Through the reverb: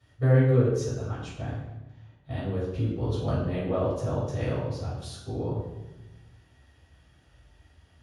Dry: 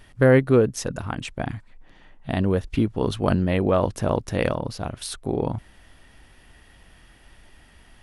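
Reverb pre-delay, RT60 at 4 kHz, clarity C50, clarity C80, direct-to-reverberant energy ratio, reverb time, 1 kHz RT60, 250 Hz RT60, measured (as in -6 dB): 3 ms, 0.75 s, 1.0 dB, 3.5 dB, -11.5 dB, 1.1 s, 1.0 s, 1.5 s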